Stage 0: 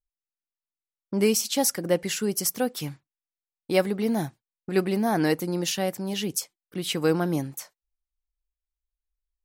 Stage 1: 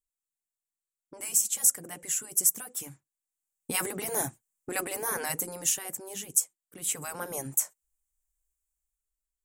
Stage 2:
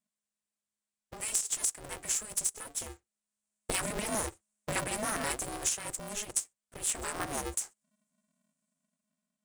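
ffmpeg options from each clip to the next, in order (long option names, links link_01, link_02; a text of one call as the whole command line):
ffmpeg -i in.wav -af "afftfilt=real='re*lt(hypot(re,im),0.224)':imag='im*lt(hypot(re,im),0.224)':win_size=1024:overlap=0.75,highshelf=frequency=5900:width_type=q:width=3:gain=9.5,dynaudnorm=framelen=190:gausssize=9:maxgain=11dB,volume=-7.5dB" out.wav
ffmpeg -i in.wav -af "acompressor=threshold=-28dB:ratio=6,aresample=22050,aresample=44100,aeval=exprs='val(0)*sgn(sin(2*PI*210*n/s))':channel_layout=same,volume=1.5dB" out.wav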